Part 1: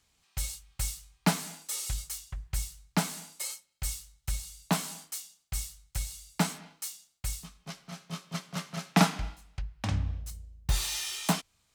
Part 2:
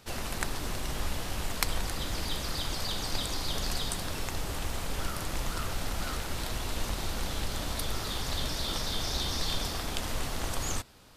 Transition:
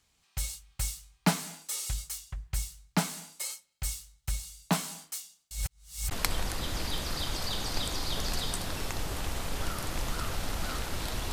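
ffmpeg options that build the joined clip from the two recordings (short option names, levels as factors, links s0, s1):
-filter_complex "[0:a]apad=whole_dur=11.32,atrim=end=11.32,asplit=2[s0][s1];[s0]atrim=end=5.512[s2];[s1]atrim=start=5.508:end=6.112,asetpts=PTS-STARTPTS,areverse[s3];[1:a]atrim=start=1.488:end=6.7[s4];[s2][s3]acrossfade=d=0.004:c1=hsin:c2=hsin[s5];[s5][s4]acrossfade=d=0.004:c1=hsin:c2=hsin"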